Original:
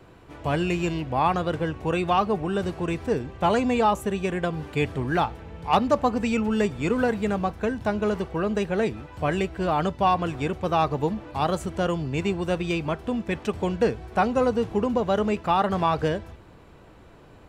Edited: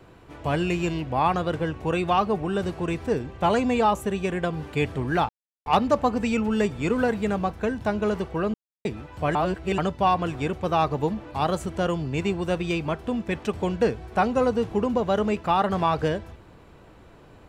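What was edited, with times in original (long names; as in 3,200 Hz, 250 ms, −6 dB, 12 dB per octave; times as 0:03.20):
0:05.29–0:05.66: silence
0:08.54–0:08.85: silence
0:09.35–0:09.78: reverse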